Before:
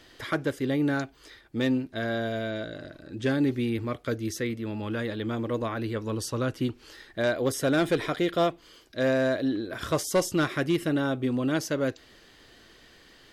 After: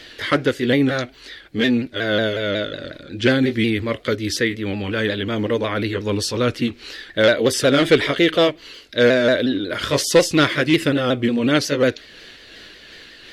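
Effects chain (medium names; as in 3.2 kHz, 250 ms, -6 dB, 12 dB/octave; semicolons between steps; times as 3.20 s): sawtooth pitch modulation -2 st, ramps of 182 ms; ten-band graphic EQ 500 Hz +5 dB, 1 kHz -4 dB, 2 kHz +8 dB, 4 kHz +8 dB; trim +7.5 dB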